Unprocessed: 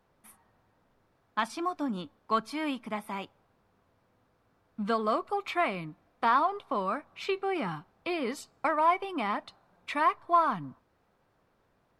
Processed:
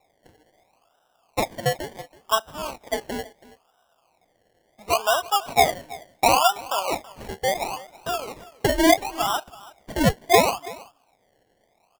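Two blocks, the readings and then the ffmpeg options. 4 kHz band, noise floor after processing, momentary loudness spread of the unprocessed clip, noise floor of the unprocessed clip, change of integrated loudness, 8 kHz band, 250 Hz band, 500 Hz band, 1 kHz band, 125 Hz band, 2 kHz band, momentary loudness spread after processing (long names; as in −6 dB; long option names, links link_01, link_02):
+14.5 dB, −67 dBFS, 13 LU, −71 dBFS, +7.5 dB, can't be measured, +6.0 dB, +9.0 dB, +5.0 dB, +12.0 dB, +7.5 dB, 18 LU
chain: -af "highpass=frequency=720:width_type=q:width=4.9,acrusher=samples=28:mix=1:aa=0.000001:lfo=1:lforange=16.8:lforate=0.72,aecho=1:1:328:0.1"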